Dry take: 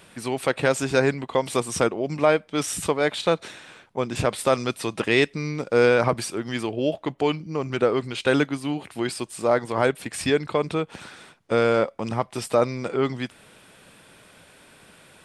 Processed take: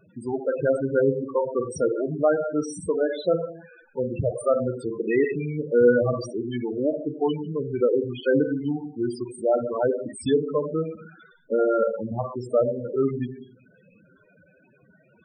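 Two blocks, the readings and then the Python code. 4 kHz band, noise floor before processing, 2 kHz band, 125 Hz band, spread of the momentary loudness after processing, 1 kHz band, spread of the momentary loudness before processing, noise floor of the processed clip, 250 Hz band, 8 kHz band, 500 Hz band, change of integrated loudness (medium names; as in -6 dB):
-13.0 dB, -54 dBFS, -8.5 dB, -2.0 dB, 8 LU, -6.5 dB, 8 LU, -59 dBFS, 0.0 dB, under -10 dB, +0.5 dB, -1.0 dB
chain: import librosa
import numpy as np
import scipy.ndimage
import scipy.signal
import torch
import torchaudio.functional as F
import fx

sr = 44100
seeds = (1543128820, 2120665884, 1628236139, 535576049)

y = fx.rev_schroeder(x, sr, rt60_s=0.76, comb_ms=33, drr_db=4.5)
y = fx.spec_topn(y, sr, count=8)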